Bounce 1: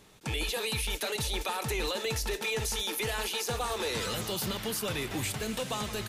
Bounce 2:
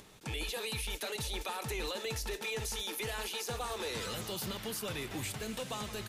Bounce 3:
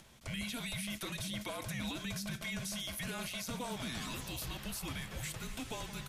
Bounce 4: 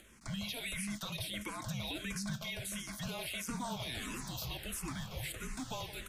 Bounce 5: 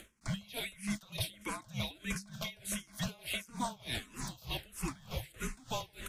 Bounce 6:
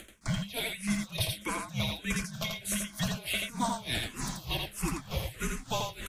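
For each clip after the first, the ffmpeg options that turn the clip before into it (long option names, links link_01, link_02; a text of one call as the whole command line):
ffmpeg -i in.wav -af "acompressor=mode=upward:threshold=-44dB:ratio=2.5,volume=-5.5dB" out.wav
ffmpeg -i in.wav -af "afreqshift=-250,volume=-2.5dB" out.wav
ffmpeg -i in.wav -filter_complex "[0:a]asplit=2[link_01][link_02];[link_02]afreqshift=-1.5[link_03];[link_01][link_03]amix=inputs=2:normalize=1,volume=3dB" out.wav
ffmpeg -i in.wav -af "aeval=exprs='val(0)*pow(10,-24*(0.5-0.5*cos(2*PI*3.3*n/s))/20)':channel_layout=same,volume=6dB" out.wav
ffmpeg -i in.wav -af "aecho=1:1:84:0.631,volume=5dB" out.wav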